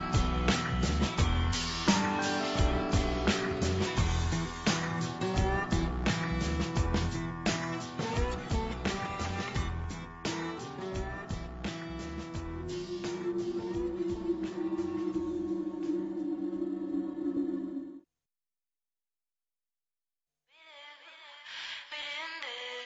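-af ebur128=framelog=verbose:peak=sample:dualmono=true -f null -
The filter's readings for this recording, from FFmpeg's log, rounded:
Integrated loudness:
  I:         -30.0 LUFS
  Threshold: -40.2 LUFS
Loudness range:
  LRA:        11.3 LU
  Threshold: -50.9 LUFS
  LRA low:   -38.1 LUFS
  LRA high:  -26.8 LUFS
Sample peak:
  Peak:      -13.7 dBFS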